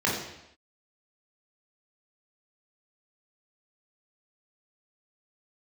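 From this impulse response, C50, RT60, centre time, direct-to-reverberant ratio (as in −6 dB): 2.5 dB, non-exponential decay, 50 ms, −4.5 dB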